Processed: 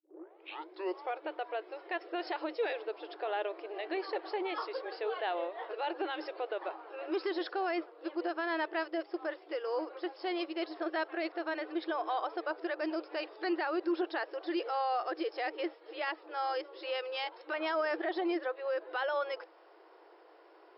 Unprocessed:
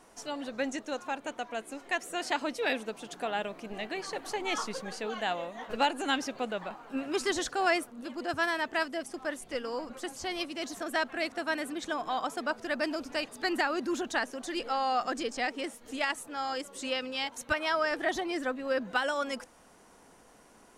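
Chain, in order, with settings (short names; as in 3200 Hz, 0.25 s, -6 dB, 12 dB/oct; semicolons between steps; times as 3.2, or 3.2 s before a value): tape start at the beginning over 1.26 s; tilt -2.5 dB/oct; limiter -24.5 dBFS, peak gain reduction 11 dB; FFT band-pass 310–5400 Hz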